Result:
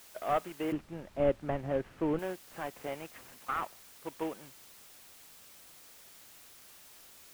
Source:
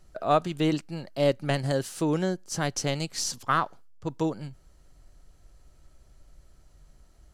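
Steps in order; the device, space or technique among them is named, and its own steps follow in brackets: army field radio (BPF 360–2800 Hz; CVSD 16 kbps; white noise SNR 16 dB); 0.72–2.19 RIAA curve playback; gain -5 dB

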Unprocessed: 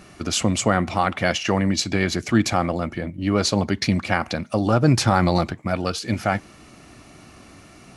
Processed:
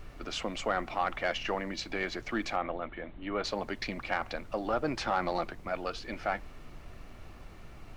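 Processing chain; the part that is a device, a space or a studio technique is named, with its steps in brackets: aircraft cabin announcement (BPF 400–3400 Hz; soft clip -10.5 dBFS, distortion -20 dB; brown noise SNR 10 dB); 2.56–3.44 elliptic low-pass 3700 Hz, stop band 40 dB; gain -7.5 dB

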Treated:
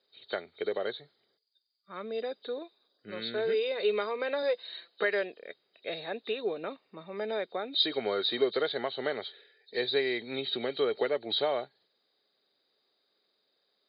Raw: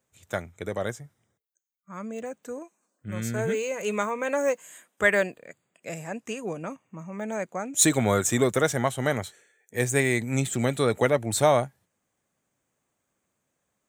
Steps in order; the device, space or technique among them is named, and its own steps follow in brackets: hearing aid with frequency lowering (nonlinear frequency compression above 3000 Hz 4:1; compressor 2.5:1, threshold -30 dBFS, peak gain reduction 13 dB; speaker cabinet 370–5300 Hz, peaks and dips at 410 Hz +9 dB, 1000 Hz -5 dB, 5100 Hz +5 dB); 4.42–5.04 comb 5.9 ms, depth 58%

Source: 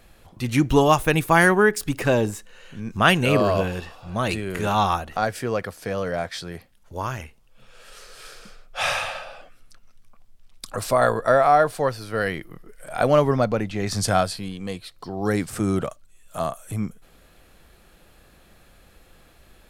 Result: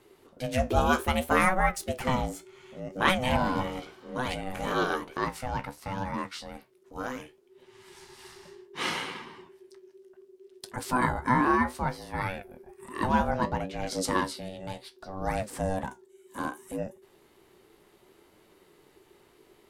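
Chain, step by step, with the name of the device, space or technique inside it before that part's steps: alien voice (ring modulator 380 Hz; flange 0.65 Hz, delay 8.6 ms, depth 9.8 ms, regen +60%)

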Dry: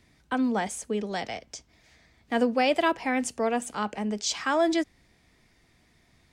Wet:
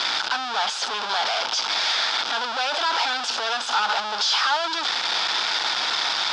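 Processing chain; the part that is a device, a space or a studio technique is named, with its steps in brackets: home computer beeper (infinite clipping; speaker cabinet 790–5400 Hz, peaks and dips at 870 Hz +9 dB, 1400 Hz +9 dB, 2000 Hz -6 dB, 3500 Hz +9 dB, 5000 Hz +8 dB); gain +5 dB

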